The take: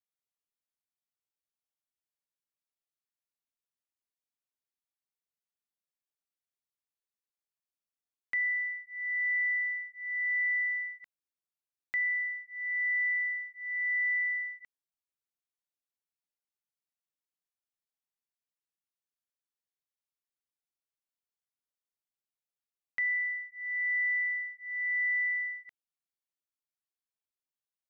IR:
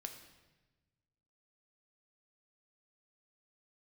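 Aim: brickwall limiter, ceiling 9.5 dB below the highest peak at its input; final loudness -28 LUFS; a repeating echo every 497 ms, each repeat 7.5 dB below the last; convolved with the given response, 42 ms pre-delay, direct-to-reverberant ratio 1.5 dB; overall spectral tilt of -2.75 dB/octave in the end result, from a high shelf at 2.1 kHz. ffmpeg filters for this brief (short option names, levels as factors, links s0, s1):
-filter_complex "[0:a]highshelf=f=2100:g=-5.5,alimiter=level_in=4.73:limit=0.0631:level=0:latency=1,volume=0.211,aecho=1:1:497|994|1491|1988|2485:0.422|0.177|0.0744|0.0312|0.0131,asplit=2[s0][s1];[1:a]atrim=start_sample=2205,adelay=42[s2];[s1][s2]afir=irnorm=-1:irlink=0,volume=1.26[s3];[s0][s3]amix=inputs=2:normalize=0,volume=2.24"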